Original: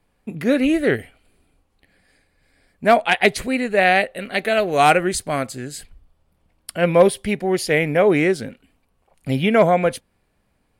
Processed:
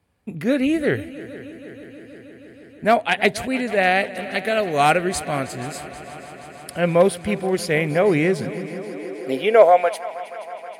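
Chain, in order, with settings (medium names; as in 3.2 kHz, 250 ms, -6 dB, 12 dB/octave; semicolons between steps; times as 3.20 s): multi-head delay 159 ms, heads second and third, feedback 74%, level -18 dB; high-pass sweep 78 Hz -> 780 Hz, 7.95–9.95 s; trim -2.5 dB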